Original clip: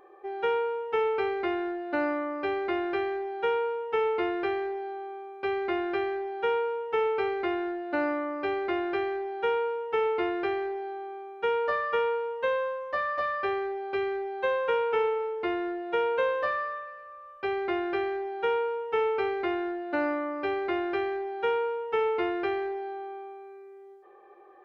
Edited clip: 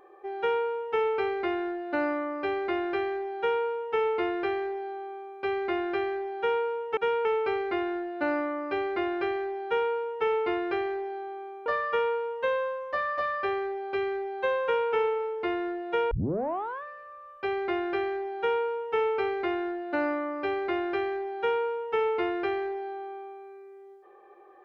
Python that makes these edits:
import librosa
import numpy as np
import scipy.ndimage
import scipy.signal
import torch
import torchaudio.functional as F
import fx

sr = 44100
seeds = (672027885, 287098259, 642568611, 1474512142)

y = fx.edit(x, sr, fx.move(start_s=11.38, length_s=0.28, to_s=6.97),
    fx.tape_start(start_s=16.11, length_s=0.72), tone=tone)